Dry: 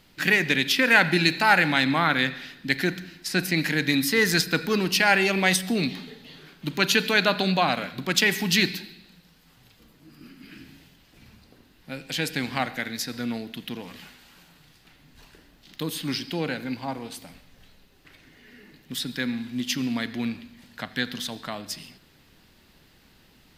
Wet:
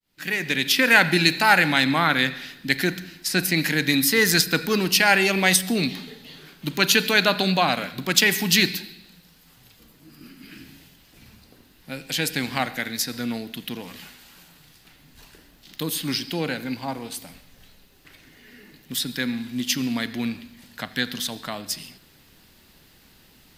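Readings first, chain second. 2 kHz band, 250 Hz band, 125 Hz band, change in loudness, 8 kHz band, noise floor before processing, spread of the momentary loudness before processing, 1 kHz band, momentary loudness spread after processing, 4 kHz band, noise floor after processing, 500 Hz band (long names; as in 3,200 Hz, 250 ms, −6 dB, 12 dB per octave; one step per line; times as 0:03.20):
+2.0 dB, +1.5 dB, +1.5 dB, +2.5 dB, +6.0 dB, −58 dBFS, 17 LU, +1.5 dB, 17 LU, +3.5 dB, −55 dBFS, +1.5 dB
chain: fade in at the beginning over 0.80 s
high-shelf EQ 6,500 Hz +8.5 dB
level +1.5 dB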